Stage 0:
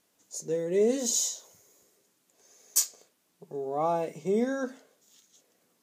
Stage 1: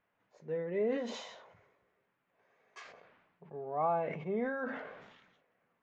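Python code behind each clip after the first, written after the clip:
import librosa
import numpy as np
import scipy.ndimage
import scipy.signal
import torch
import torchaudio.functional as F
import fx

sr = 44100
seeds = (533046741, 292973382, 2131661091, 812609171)

y = scipy.signal.sosfilt(scipy.signal.butter(4, 2200.0, 'lowpass', fs=sr, output='sos'), x)
y = fx.peak_eq(y, sr, hz=310.0, db=-11.5, octaves=1.6)
y = fx.sustainer(y, sr, db_per_s=49.0)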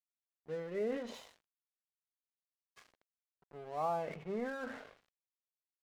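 y = np.sign(x) * np.maximum(np.abs(x) - 10.0 ** (-49.0 / 20.0), 0.0)
y = F.gain(torch.from_numpy(y), -3.0).numpy()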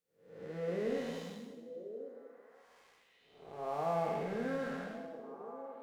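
y = fx.spec_blur(x, sr, span_ms=347.0)
y = fx.echo_stepped(y, sr, ms=540, hz=160.0, octaves=1.4, feedback_pct=70, wet_db=-5.5)
y = fx.rev_double_slope(y, sr, seeds[0], early_s=0.89, late_s=3.1, knee_db=-20, drr_db=1.5)
y = F.gain(torch.from_numpy(y), 4.0).numpy()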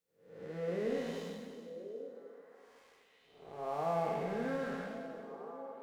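y = fx.echo_feedback(x, sr, ms=373, feedback_pct=33, wet_db=-13)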